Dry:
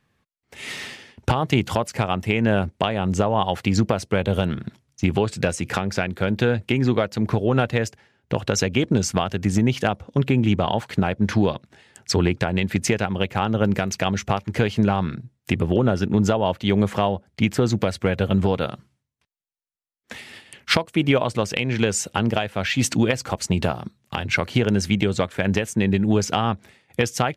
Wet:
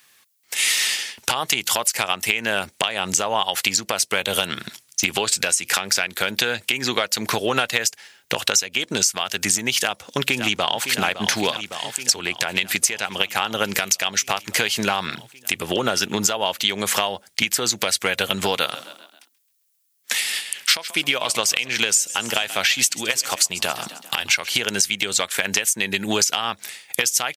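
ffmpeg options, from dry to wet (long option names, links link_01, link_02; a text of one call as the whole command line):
ffmpeg -i in.wav -filter_complex "[0:a]asplit=2[link_01][link_02];[link_02]afade=type=in:start_time=9.75:duration=0.01,afade=type=out:start_time=10.86:duration=0.01,aecho=0:1:560|1120|1680|2240|2800|3360|3920|4480|5040|5600|6160:0.211349|0.158512|0.118884|0.0891628|0.0668721|0.0501541|0.0376156|0.0282117|0.0211588|0.0158691|0.0119018[link_03];[link_01][link_03]amix=inputs=2:normalize=0,asplit=3[link_04][link_05][link_06];[link_04]afade=type=out:start_time=18.64:duration=0.02[link_07];[link_05]asplit=5[link_08][link_09][link_10][link_11][link_12];[link_09]adelay=133,afreqshift=32,volume=-19dB[link_13];[link_10]adelay=266,afreqshift=64,volume=-25.6dB[link_14];[link_11]adelay=399,afreqshift=96,volume=-32.1dB[link_15];[link_12]adelay=532,afreqshift=128,volume=-38.7dB[link_16];[link_08][link_13][link_14][link_15][link_16]amix=inputs=5:normalize=0,afade=type=in:start_time=18.64:duration=0.02,afade=type=out:start_time=24.48:duration=0.02[link_17];[link_06]afade=type=in:start_time=24.48:duration=0.02[link_18];[link_07][link_17][link_18]amix=inputs=3:normalize=0,aderivative,acompressor=threshold=-41dB:ratio=12,alimiter=level_in=26dB:limit=-1dB:release=50:level=0:latency=1,volume=-1dB" out.wav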